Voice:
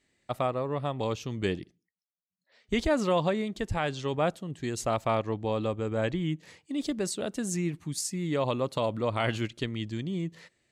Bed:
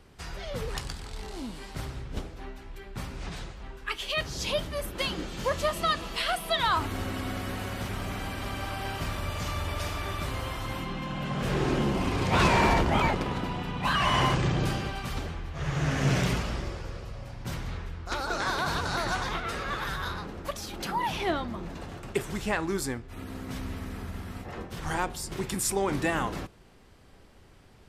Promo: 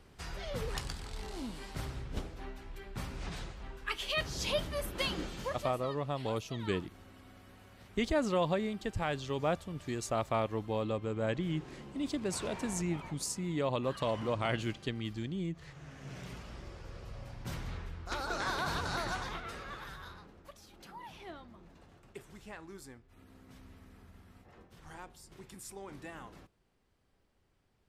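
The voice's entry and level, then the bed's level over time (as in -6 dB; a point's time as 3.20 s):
5.25 s, -4.5 dB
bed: 5.26 s -3.5 dB
5.99 s -22.5 dB
16.03 s -22.5 dB
17.15 s -5.5 dB
18.94 s -5.5 dB
20.53 s -19 dB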